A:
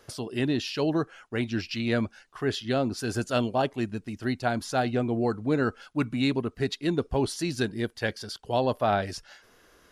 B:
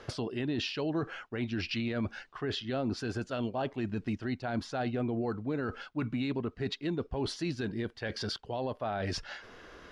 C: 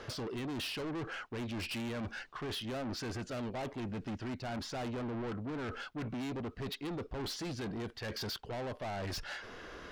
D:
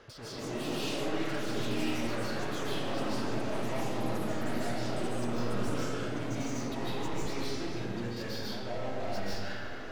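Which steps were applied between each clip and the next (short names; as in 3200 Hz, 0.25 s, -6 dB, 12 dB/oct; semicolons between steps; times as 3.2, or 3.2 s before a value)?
LPF 3900 Hz 12 dB/oct; reverse; compressor 10:1, threshold -35 dBFS, peak gain reduction 15.5 dB; reverse; limiter -32.5 dBFS, peak gain reduction 9.5 dB; gain +8 dB
soft clip -40 dBFS, distortion -7 dB; gain +3.5 dB
echoes that change speed 0.191 s, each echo +5 st, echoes 3; diffused feedback echo 1.006 s, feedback 58%, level -13 dB; digital reverb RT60 2 s, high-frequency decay 0.55×, pre-delay 0.11 s, DRR -9.5 dB; gain -8 dB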